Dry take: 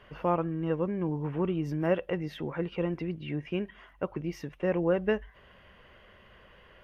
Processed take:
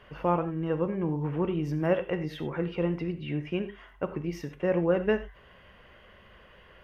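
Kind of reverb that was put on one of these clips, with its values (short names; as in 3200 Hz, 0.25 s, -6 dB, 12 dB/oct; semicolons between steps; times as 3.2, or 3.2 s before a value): non-linear reverb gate 0.12 s flat, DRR 9 dB; gain +1 dB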